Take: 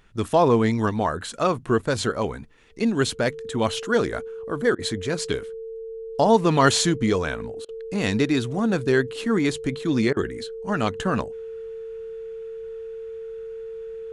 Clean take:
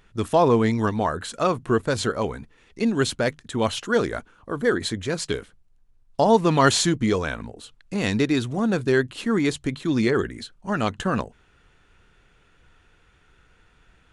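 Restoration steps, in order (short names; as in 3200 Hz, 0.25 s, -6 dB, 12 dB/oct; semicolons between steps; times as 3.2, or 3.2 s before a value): notch 450 Hz, Q 30; interpolate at 4.75/7.65/10.13, 36 ms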